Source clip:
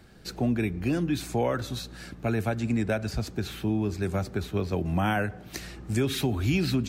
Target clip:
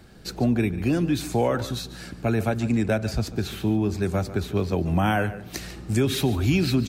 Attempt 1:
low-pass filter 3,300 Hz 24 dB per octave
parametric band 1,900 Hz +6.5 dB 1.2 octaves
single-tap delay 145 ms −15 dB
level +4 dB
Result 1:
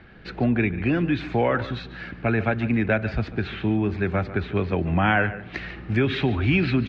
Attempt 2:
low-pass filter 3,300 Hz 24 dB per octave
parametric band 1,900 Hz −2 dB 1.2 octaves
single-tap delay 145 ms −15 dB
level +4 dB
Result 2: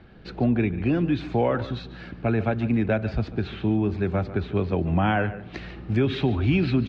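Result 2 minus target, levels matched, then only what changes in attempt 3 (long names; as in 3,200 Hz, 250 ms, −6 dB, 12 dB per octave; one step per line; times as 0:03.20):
4,000 Hz band −5.5 dB
remove: low-pass filter 3,300 Hz 24 dB per octave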